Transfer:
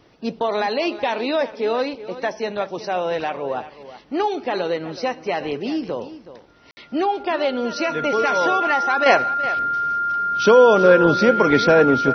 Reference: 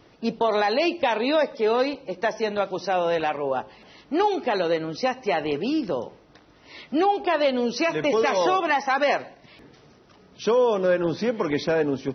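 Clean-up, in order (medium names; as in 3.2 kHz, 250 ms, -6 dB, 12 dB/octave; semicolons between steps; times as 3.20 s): band-stop 1.4 kHz, Q 30; room tone fill 6.71–6.77 s; inverse comb 373 ms -14.5 dB; trim 0 dB, from 9.06 s -8 dB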